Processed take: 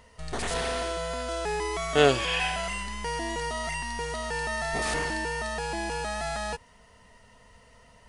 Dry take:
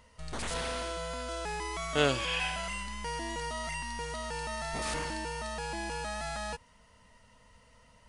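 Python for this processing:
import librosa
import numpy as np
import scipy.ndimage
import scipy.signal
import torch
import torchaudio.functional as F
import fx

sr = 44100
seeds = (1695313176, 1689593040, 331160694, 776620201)

y = fx.small_body(x, sr, hz=(410.0, 710.0, 1800.0), ring_ms=45, db=8)
y = y * librosa.db_to_amplitude(4.0)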